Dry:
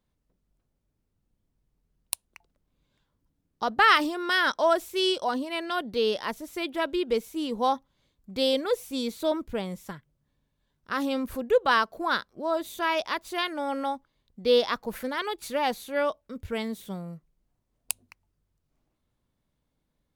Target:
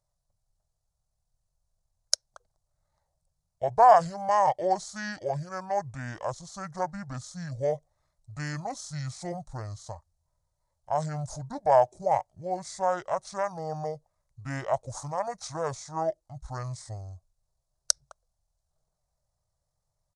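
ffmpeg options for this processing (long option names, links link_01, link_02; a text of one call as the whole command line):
ffmpeg -i in.wav -af "asetrate=24750,aresample=44100,atempo=1.7818,firequalizer=gain_entry='entry(140,0);entry(260,-19);entry(620,8);entry(2600,-17);entry(4000,3);entry(6500,8);entry(14000,1)':delay=0.05:min_phase=1,volume=-2dB" out.wav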